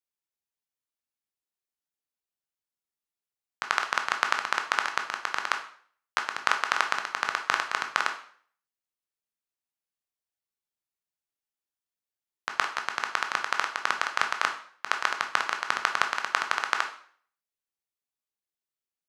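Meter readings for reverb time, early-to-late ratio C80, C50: 0.50 s, 14.0 dB, 9.5 dB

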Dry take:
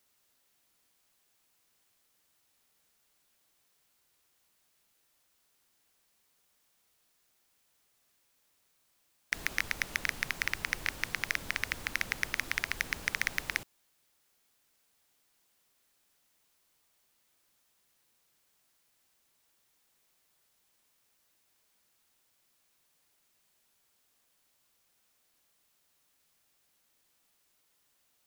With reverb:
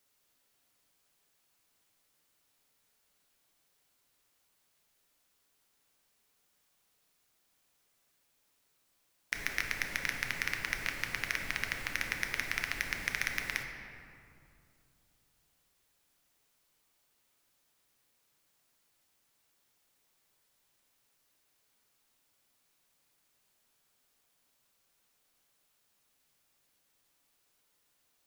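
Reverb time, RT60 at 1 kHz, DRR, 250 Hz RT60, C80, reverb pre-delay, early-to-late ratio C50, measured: 2.5 s, 2.4 s, 3.0 dB, 3.2 s, 6.5 dB, 7 ms, 5.0 dB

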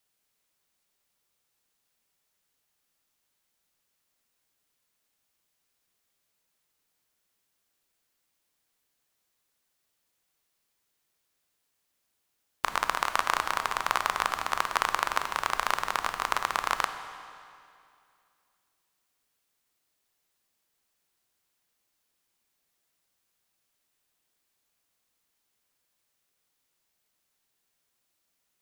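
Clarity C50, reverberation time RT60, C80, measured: 9.5 dB, 2.4 s, 10.0 dB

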